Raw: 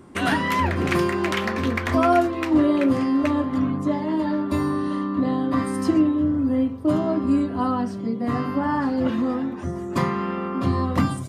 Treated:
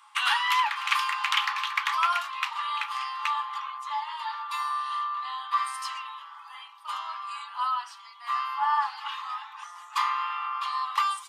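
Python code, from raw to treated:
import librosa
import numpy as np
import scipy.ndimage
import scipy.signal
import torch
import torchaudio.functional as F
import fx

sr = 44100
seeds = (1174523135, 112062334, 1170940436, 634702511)

y = scipy.signal.sosfilt(scipy.signal.cheby1(6, 9, 820.0, 'highpass', fs=sr, output='sos'), x)
y = y * 10.0 ** (6.5 / 20.0)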